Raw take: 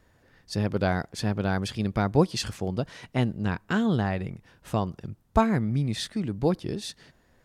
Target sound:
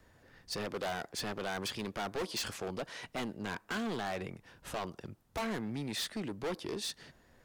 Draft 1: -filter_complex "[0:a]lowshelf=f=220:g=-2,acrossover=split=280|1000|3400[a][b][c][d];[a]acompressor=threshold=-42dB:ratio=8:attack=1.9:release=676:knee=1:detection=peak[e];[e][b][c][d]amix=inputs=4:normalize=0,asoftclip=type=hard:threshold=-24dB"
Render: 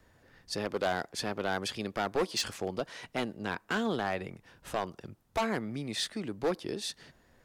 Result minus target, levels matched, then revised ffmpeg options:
hard clip: distortion -5 dB
-filter_complex "[0:a]lowshelf=f=220:g=-2,acrossover=split=280|1000|3400[a][b][c][d];[a]acompressor=threshold=-42dB:ratio=8:attack=1.9:release=676:knee=1:detection=peak[e];[e][b][c][d]amix=inputs=4:normalize=0,asoftclip=type=hard:threshold=-33dB"

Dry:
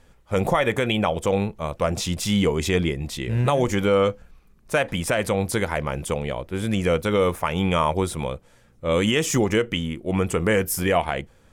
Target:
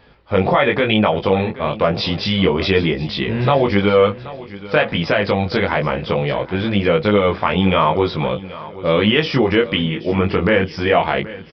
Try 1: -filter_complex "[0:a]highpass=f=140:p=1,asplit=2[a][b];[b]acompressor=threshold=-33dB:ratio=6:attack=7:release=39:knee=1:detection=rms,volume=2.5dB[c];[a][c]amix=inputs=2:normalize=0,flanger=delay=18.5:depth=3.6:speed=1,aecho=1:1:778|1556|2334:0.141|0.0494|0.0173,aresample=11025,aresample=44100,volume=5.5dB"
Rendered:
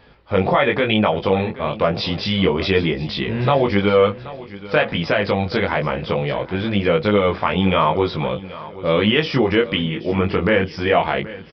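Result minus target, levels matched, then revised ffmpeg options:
compressor: peak gain reduction +5.5 dB
-filter_complex "[0:a]highpass=f=140:p=1,asplit=2[a][b];[b]acompressor=threshold=-26.5dB:ratio=6:attack=7:release=39:knee=1:detection=rms,volume=2.5dB[c];[a][c]amix=inputs=2:normalize=0,flanger=delay=18.5:depth=3.6:speed=1,aecho=1:1:778|1556|2334:0.141|0.0494|0.0173,aresample=11025,aresample=44100,volume=5.5dB"

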